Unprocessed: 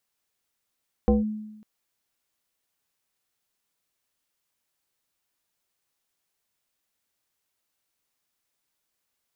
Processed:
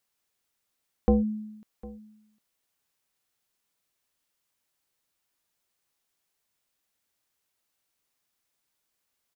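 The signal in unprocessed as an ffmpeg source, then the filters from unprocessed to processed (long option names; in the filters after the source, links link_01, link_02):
-f lavfi -i "aevalsrc='0.2*pow(10,-3*t/0.97)*sin(2*PI*214*t+1.4*clip(1-t/0.16,0,1)*sin(2*PI*1.29*214*t))':duration=0.55:sample_rate=44100"
-af "aecho=1:1:754:0.0944"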